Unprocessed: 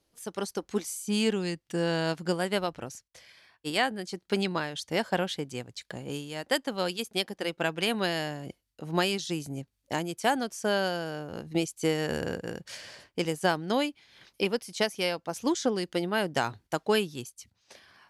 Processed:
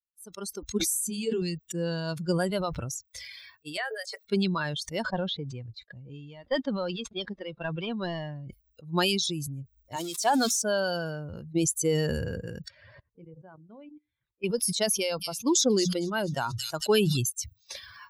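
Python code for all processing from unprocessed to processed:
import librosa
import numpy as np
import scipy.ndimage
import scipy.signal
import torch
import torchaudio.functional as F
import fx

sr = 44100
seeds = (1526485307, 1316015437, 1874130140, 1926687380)

y = fx.chain(x, sr, fx.hum_notches(base_hz=50, count=4),
    fx.detune_double(cents=38), at=(0.78, 1.42))
y = fx.chain(y, sr, fx.cheby_ripple_highpass(hz=430.0, ripple_db=6),
    fx.high_shelf(hz=11000.0, db=4.0),
    fx.band_squash(depth_pct=70), at=(3.77, 4.25))
y = fx.chain(y, sr, fx.cvsd(bps=64000),
    fx.air_absorb(metres=130.0), at=(5.02, 8.49))
y = fx.chain(y, sr, fx.crossing_spikes(level_db=-21.5),
    fx.bandpass_edges(low_hz=220.0, high_hz=6900.0),
    fx.hum_notches(base_hz=60, count=6), at=(9.96, 10.62))
y = fx.chain(y, sr, fx.hum_notches(base_hz=50, count=10),
    fx.level_steps(step_db=17),
    fx.spacing_loss(db_at_10k=41), at=(12.68, 14.44))
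y = fx.chain(y, sr, fx.hum_notches(base_hz=60, count=3),
    fx.echo_wet_highpass(ms=228, feedback_pct=57, hz=4000.0, wet_db=-5.0), at=(14.98, 17.17))
y = fx.bin_expand(y, sr, power=2.0)
y = fx.dynamic_eq(y, sr, hz=2100.0, q=2.1, threshold_db=-53.0, ratio=4.0, max_db=-7)
y = fx.sustainer(y, sr, db_per_s=24.0)
y = y * 10.0 ** (4.0 / 20.0)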